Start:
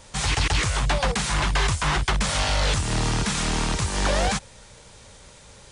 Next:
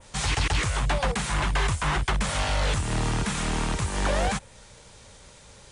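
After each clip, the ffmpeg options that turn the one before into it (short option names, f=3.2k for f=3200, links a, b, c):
-af "adynamicequalizer=threshold=0.00891:dfrequency=5000:dqfactor=1.1:tfrequency=5000:tqfactor=1.1:attack=5:release=100:ratio=0.375:range=3:mode=cutabove:tftype=bell,volume=-2dB"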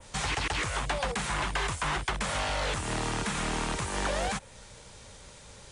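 -filter_complex "[0:a]acrossover=split=240|2800[a][b][c];[a]acompressor=threshold=-36dB:ratio=4[d];[b]acompressor=threshold=-29dB:ratio=4[e];[c]acompressor=threshold=-37dB:ratio=4[f];[d][e][f]amix=inputs=3:normalize=0"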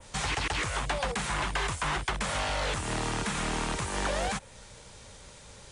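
-af anull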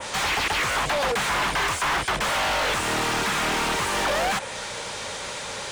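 -filter_complex "[0:a]asplit=2[a][b];[b]highpass=f=720:p=1,volume=30dB,asoftclip=type=tanh:threshold=-16.5dB[c];[a][c]amix=inputs=2:normalize=0,lowpass=f=3.4k:p=1,volume=-6dB"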